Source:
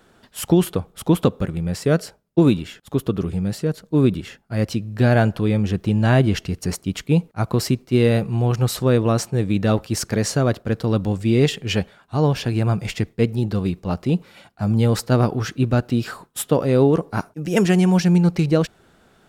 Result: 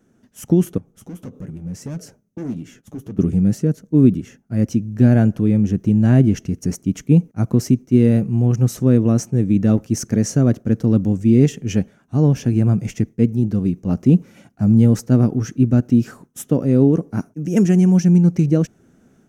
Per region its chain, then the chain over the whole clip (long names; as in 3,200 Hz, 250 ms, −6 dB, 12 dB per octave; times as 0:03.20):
0:00.78–0:03.19: hard clipping −21 dBFS + downward compressor 3 to 1, threshold −35 dBFS + flanger 1.6 Hz, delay 6.2 ms, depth 4.6 ms, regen −42%
whole clip: parametric band 6,100 Hz +13.5 dB 0.29 octaves; automatic gain control; octave-band graphic EQ 125/250/1,000/4,000 Hz +6/+11/−6/−11 dB; level −9.5 dB